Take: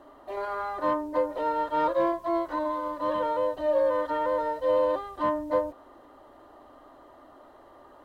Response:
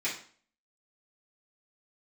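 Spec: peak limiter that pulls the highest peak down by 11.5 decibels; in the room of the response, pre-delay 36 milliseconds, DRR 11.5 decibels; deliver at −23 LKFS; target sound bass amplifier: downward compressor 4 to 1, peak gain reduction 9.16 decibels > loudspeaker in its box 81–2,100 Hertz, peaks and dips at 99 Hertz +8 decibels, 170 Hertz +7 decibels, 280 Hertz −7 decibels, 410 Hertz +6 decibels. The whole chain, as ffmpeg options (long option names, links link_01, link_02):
-filter_complex "[0:a]alimiter=level_in=2dB:limit=-24dB:level=0:latency=1,volume=-2dB,asplit=2[link_01][link_02];[1:a]atrim=start_sample=2205,adelay=36[link_03];[link_02][link_03]afir=irnorm=-1:irlink=0,volume=-18.5dB[link_04];[link_01][link_04]amix=inputs=2:normalize=0,acompressor=threshold=-39dB:ratio=4,highpass=frequency=81:width=0.5412,highpass=frequency=81:width=1.3066,equalizer=frequency=99:width_type=q:width=4:gain=8,equalizer=frequency=170:width_type=q:width=4:gain=7,equalizer=frequency=280:width_type=q:width=4:gain=-7,equalizer=frequency=410:width_type=q:width=4:gain=6,lowpass=frequency=2100:width=0.5412,lowpass=frequency=2100:width=1.3066,volume=18dB"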